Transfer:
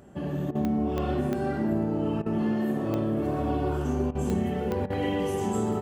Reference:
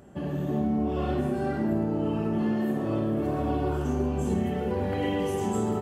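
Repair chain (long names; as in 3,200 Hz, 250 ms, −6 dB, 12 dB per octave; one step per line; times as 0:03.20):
click removal
repair the gap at 0:00.51/0:02.22/0:04.11/0:04.86, 40 ms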